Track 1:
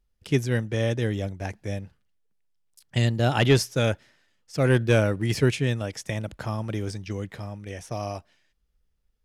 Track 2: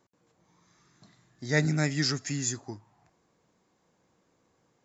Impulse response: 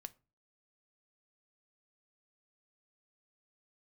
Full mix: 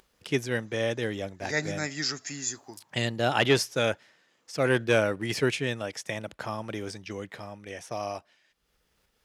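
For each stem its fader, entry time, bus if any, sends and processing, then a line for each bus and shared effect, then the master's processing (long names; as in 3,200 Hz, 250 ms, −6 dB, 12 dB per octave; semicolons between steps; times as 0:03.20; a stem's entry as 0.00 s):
+1.5 dB, 0.00 s, no send, high-shelf EQ 6,200 Hz −5 dB; upward compression, threshold −40 dBFS
−0.5 dB, 0.00 s, no send, no processing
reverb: not used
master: high-pass filter 470 Hz 6 dB per octave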